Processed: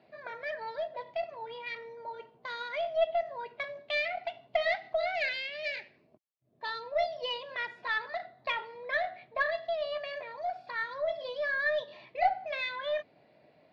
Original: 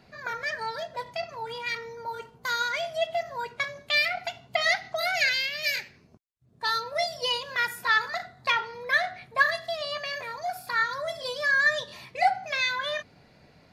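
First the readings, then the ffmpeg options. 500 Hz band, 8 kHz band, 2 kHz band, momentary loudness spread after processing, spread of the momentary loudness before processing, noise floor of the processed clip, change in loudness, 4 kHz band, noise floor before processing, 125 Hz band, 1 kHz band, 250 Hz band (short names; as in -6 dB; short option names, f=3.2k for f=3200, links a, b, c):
+0.5 dB, under -20 dB, -8.5 dB, 10 LU, 11 LU, -65 dBFS, -6.5 dB, -10.5 dB, -58 dBFS, under -10 dB, -5.5 dB, n/a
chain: -af "highpass=170,equalizer=f=190:t=q:w=4:g=-4,equalizer=f=330:t=q:w=4:g=4,equalizer=f=620:t=q:w=4:g=10,equalizer=f=1.4k:t=q:w=4:g=-6,lowpass=f=3.7k:w=0.5412,lowpass=f=3.7k:w=1.3066,aeval=exprs='0.398*(cos(1*acos(clip(val(0)/0.398,-1,1)))-cos(1*PI/2))+0.0112*(cos(4*acos(clip(val(0)/0.398,-1,1)))-cos(4*PI/2))':c=same,volume=-7dB"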